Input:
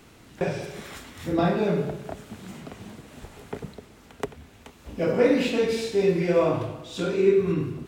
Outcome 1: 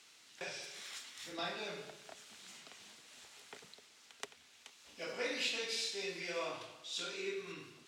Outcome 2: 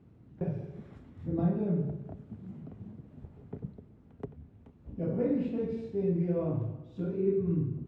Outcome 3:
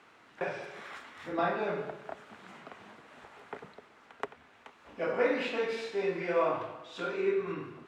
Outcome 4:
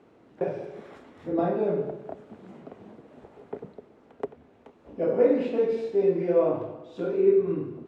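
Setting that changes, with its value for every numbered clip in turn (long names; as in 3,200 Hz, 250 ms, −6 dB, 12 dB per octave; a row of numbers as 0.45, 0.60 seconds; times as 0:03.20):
resonant band-pass, frequency: 5,100, 120, 1,300, 470 Hertz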